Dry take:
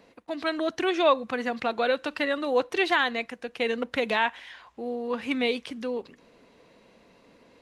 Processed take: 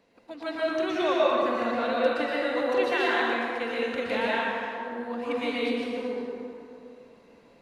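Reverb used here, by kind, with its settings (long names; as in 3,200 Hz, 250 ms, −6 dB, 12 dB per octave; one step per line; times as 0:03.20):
dense smooth reverb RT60 2.6 s, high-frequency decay 0.5×, pre-delay 105 ms, DRR −7.5 dB
level −8.5 dB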